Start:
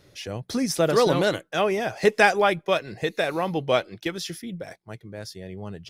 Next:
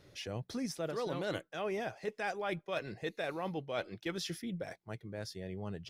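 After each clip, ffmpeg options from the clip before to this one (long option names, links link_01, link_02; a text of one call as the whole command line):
ffmpeg -i in.wav -af "highshelf=frequency=6200:gain=-5.5,areverse,acompressor=threshold=-29dB:ratio=12,areverse,volume=-4.5dB" out.wav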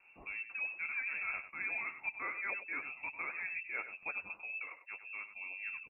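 ffmpeg -i in.wav -af "flanger=delay=4.8:depth=9.6:regen=32:speed=1.9:shape=sinusoidal,aecho=1:1:97:0.282,lowpass=frequency=2400:width_type=q:width=0.5098,lowpass=frequency=2400:width_type=q:width=0.6013,lowpass=frequency=2400:width_type=q:width=0.9,lowpass=frequency=2400:width_type=q:width=2.563,afreqshift=-2800,volume=1dB" out.wav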